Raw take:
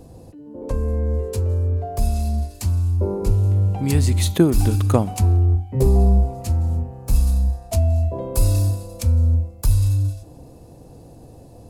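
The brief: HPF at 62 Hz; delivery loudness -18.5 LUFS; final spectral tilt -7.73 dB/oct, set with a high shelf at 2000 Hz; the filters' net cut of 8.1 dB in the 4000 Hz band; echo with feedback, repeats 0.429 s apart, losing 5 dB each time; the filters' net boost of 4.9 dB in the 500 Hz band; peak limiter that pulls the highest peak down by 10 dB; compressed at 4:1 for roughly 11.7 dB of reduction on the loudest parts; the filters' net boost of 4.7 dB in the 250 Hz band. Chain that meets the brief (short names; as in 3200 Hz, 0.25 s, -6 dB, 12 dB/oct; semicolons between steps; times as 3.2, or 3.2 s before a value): HPF 62 Hz; bell 250 Hz +5 dB; bell 500 Hz +5 dB; high shelf 2000 Hz -6.5 dB; bell 4000 Hz -3.5 dB; compressor 4:1, threshold -20 dBFS; limiter -17.5 dBFS; feedback echo 0.429 s, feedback 56%, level -5 dB; gain +6 dB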